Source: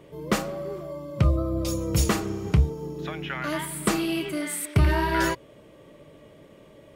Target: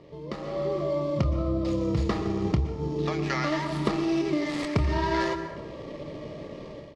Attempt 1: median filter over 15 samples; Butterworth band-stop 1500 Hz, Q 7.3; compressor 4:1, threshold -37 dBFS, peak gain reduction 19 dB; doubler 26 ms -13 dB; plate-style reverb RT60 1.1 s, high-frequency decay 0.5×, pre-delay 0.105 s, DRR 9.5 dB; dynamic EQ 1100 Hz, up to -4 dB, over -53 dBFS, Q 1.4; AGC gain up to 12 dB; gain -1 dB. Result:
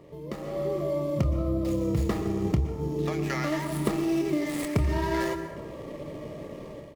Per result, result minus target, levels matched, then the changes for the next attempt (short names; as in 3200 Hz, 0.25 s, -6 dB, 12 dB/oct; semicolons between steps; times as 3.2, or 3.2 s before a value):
4000 Hz band -3.0 dB; 1000 Hz band -2.5 dB
add after compressor: synth low-pass 4700 Hz, resonance Q 1.7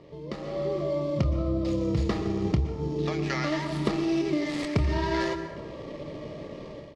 1000 Hz band -2.5 dB
remove: dynamic EQ 1100 Hz, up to -4 dB, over -53 dBFS, Q 1.4